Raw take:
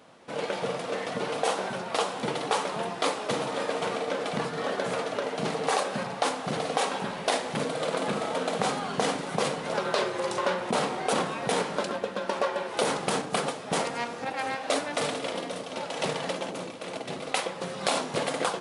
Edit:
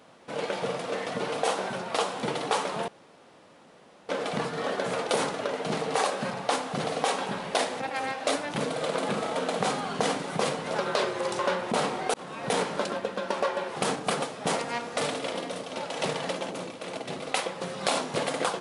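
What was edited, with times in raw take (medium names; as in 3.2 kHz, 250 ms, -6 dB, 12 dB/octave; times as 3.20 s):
2.88–4.09 s: room tone
11.13–11.50 s: fade in
12.75–13.02 s: move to 5.07 s
14.23–14.97 s: move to 7.53 s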